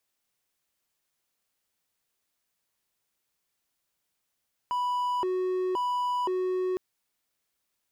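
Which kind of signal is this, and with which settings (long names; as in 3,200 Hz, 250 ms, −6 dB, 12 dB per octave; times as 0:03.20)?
siren hi-lo 369–986 Hz 0.96 per second triangle −23.5 dBFS 2.06 s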